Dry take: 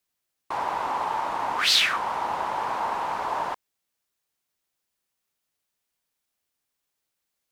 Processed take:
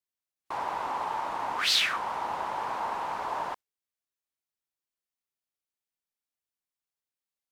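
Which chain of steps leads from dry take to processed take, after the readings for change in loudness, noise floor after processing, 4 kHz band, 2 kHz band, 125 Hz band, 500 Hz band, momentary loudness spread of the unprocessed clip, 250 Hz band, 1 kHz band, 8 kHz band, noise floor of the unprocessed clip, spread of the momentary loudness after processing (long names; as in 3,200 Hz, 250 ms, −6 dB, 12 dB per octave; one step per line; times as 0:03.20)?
−4.5 dB, below −85 dBFS, −4.5 dB, −4.5 dB, −4.5 dB, −4.5 dB, 11 LU, −4.5 dB, −4.5 dB, −4.5 dB, −82 dBFS, 11 LU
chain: noise reduction from a noise print of the clip's start 9 dB
level −4.5 dB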